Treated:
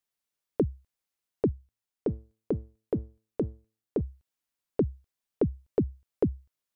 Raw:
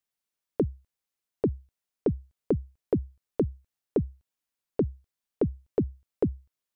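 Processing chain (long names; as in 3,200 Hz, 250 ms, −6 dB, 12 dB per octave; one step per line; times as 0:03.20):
0:01.51–0:04.01: tuned comb filter 110 Hz, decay 0.39 s, harmonics all, mix 40%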